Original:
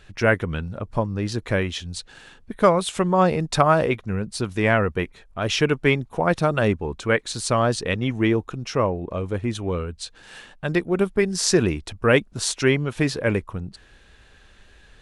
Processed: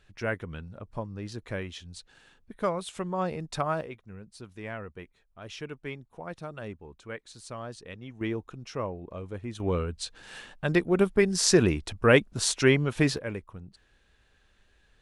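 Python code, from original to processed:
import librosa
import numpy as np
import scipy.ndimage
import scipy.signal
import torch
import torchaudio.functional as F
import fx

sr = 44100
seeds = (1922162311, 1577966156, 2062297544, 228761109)

y = fx.gain(x, sr, db=fx.steps((0.0, -12.0), (3.81, -19.0), (8.21, -11.5), (9.6, -2.0), (13.18, -13.0)))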